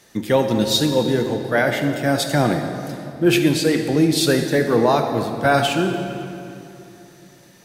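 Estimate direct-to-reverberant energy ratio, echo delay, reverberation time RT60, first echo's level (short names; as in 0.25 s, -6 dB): 5.0 dB, none, 2.8 s, none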